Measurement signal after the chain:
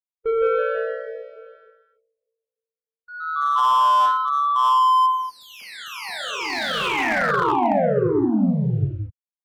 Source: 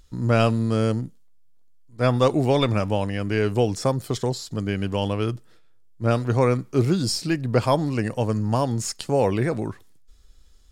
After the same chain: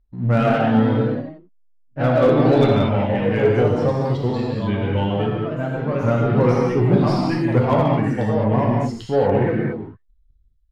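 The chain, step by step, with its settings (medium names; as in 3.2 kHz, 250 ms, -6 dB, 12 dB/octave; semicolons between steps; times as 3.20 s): expander on every frequency bin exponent 1.5; treble shelf 7.2 kHz +4 dB; waveshaping leveller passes 2; gated-style reverb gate 260 ms flat, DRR -3 dB; ever faster or slower copies 189 ms, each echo +2 st, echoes 3, each echo -6 dB; distance through air 360 m; slew-rate limiter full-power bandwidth 260 Hz; trim -2.5 dB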